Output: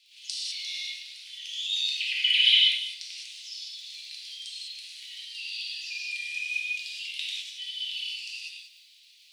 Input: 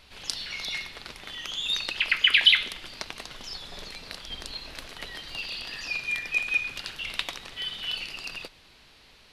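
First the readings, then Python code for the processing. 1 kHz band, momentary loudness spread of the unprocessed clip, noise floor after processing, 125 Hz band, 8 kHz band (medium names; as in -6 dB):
under -35 dB, 19 LU, -57 dBFS, under -40 dB, +1.0 dB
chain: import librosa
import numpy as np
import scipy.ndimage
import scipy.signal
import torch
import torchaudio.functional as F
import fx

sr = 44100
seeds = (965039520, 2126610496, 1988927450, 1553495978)

p1 = scipy.signal.sosfilt(scipy.signal.butter(4, 9800.0, 'lowpass', fs=sr, output='sos'), x)
p2 = fx.dmg_crackle(p1, sr, seeds[0], per_s=50.0, level_db=-43.0)
p3 = scipy.signal.sosfilt(scipy.signal.butter(6, 2600.0, 'highpass', fs=sr, output='sos'), p2)
p4 = p3 + fx.echo_single(p3, sr, ms=200, db=-15.0, dry=0)
p5 = fx.rev_gated(p4, sr, seeds[1], gate_ms=230, shape='flat', drr_db=-6.0)
y = p5 * 10.0 ** (-5.5 / 20.0)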